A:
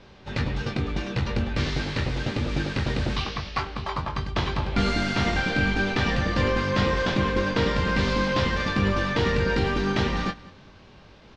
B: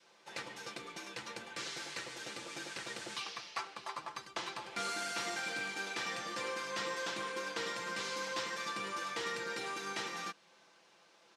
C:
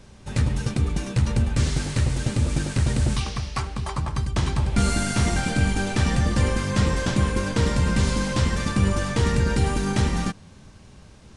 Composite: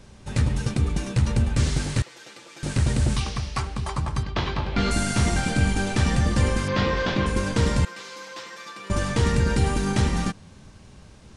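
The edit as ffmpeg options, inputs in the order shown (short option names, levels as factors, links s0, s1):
-filter_complex "[1:a]asplit=2[s0][s1];[0:a]asplit=2[s2][s3];[2:a]asplit=5[s4][s5][s6][s7][s8];[s4]atrim=end=2.022[s9];[s0]atrim=start=2.018:end=2.632[s10];[s5]atrim=start=2.628:end=4.232[s11];[s2]atrim=start=4.228:end=4.912[s12];[s6]atrim=start=4.908:end=6.682[s13];[s3]atrim=start=6.678:end=7.262[s14];[s7]atrim=start=7.258:end=7.852[s15];[s1]atrim=start=7.848:end=8.902[s16];[s8]atrim=start=8.898[s17];[s9][s10]acrossfade=d=0.004:c1=hsin:c2=hsin[s18];[s18][s11]acrossfade=d=0.004:c1=hsin:c2=hsin[s19];[s19][s12]acrossfade=d=0.004:c1=hsin:c2=hsin[s20];[s20][s13]acrossfade=d=0.004:c1=hsin:c2=hsin[s21];[s21][s14]acrossfade=d=0.004:c1=hsin:c2=hsin[s22];[s22][s15]acrossfade=d=0.004:c1=hsin:c2=hsin[s23];[s23][s16]acrossfade=d=0.004:c1=hsin:c2=hsin[s24];[s24][s17]acrossfade=d=0.004:c1=hsin:c2=hsin"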